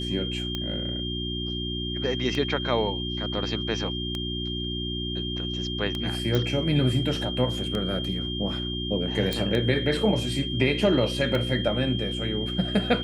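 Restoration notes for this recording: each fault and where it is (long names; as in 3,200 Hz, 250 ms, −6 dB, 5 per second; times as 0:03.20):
mains hum 60 Hz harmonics 6 −32 dBFS
scratch tick 33 1/3 rpm −16 dBFS
whistle 3,200 Hz −32 dBFS
0:06.35: click
0:09.33: click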